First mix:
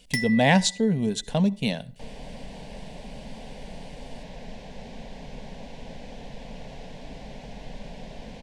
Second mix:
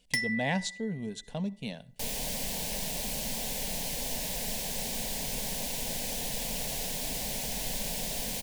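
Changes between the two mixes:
speech -11.5 dB; first sound: send -10.5 dB; second sound: remove tape spacing loss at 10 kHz 34 dB

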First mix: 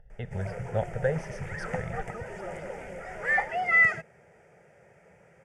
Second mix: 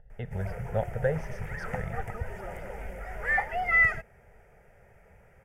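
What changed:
background: remove speaker cabinet 140–8400 Hz, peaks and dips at 160 Hz +7 dB, 330 Hz +6 dB, 540 Hz +4 dB; master: add high shelf 4500 Hz -8.5 dB

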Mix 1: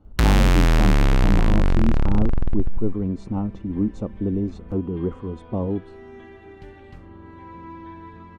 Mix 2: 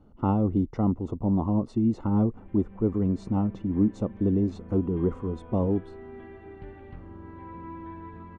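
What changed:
first sound: muted; second sound: add air absorption 450 m

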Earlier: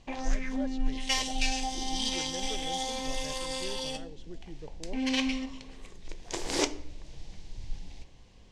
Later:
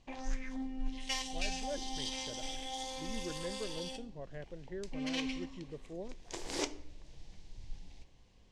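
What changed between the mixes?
speech: entry +1.10 s; background -8.0 dB

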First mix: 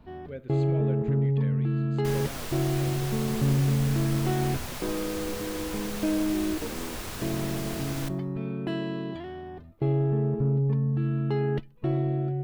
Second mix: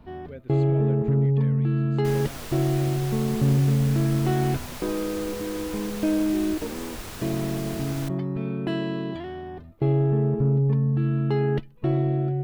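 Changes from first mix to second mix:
speech: send -11.5 dB; first sound +3.5 dB; second sound: send -8.5 dB

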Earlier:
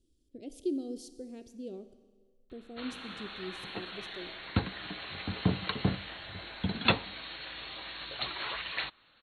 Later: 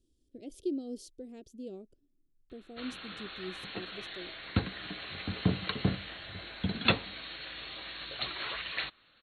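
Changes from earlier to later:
background: add bell 900 Hz -5.5 dB 0.49 oct; reverb: off

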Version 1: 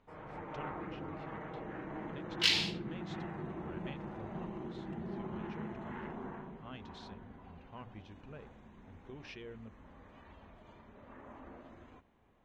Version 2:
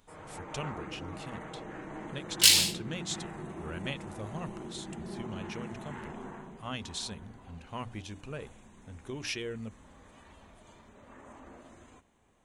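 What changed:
speech +9.5 dB; master: remove air absorption 250 m

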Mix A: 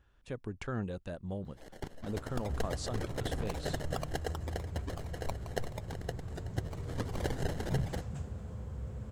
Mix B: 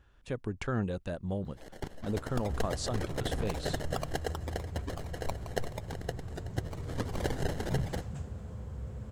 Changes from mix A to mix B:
speech +4.5 dB; reverb: on, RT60 0.60 s

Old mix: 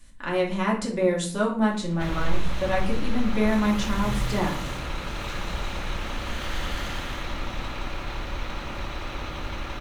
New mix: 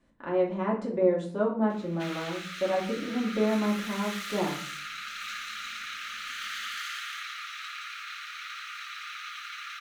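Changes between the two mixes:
speech: add band-pass 440 Hz, Q 0.84; background: add Chebyshev high-pass 1200 Hz, order 8

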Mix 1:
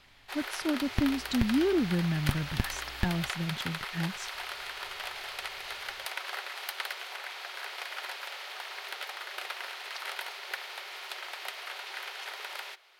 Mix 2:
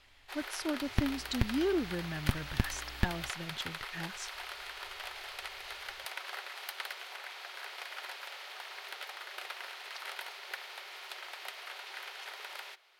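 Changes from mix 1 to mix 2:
speech: add bell 180 Hz -12 dB 1.3 oct; first sound -4.5 dB

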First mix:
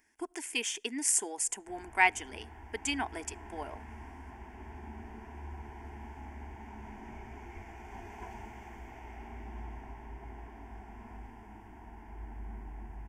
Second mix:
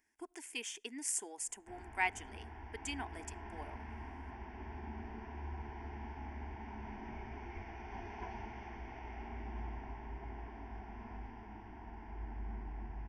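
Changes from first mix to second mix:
speech -9.0 dB; background: add steep low-pass 5900 Hz 96 dB/oct

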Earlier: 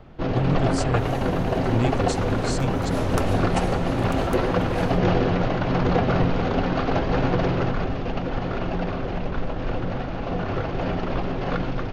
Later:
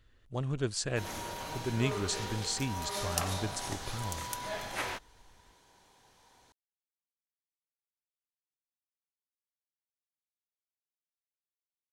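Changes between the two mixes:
first sound: muted; second sound +5.5 dB; master: add low shelf 390 Hz -9.5 dB

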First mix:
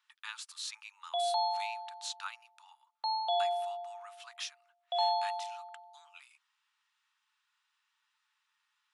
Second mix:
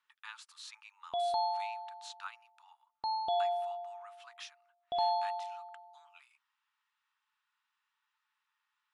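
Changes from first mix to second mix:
background: remove Chebyshev band-pass 530–4200 Hz, order 5; master: add high shelf 2700 Hz -11.5 dB

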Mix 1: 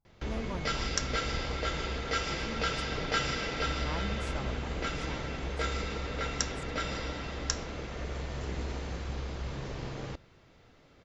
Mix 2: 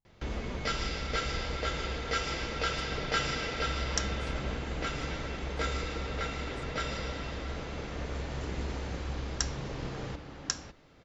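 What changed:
speech -8.0 dB; second sound: entry +3.00 s

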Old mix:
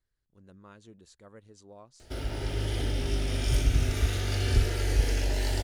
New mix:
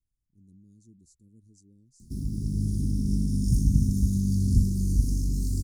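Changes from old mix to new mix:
background: remove fixed phaser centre 450 Hz, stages 4; master: add inverse Chebyshev band-stop 620–2900 Hz, stop band 50 dB

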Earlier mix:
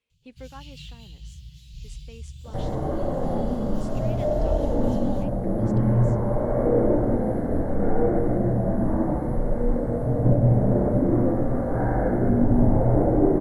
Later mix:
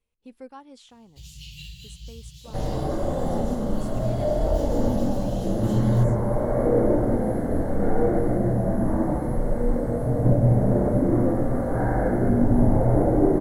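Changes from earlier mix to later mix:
speech: remove weighting filter D; first sound: entry +0.80 s; master: add high shelf 3100 Hz +9.5 dB

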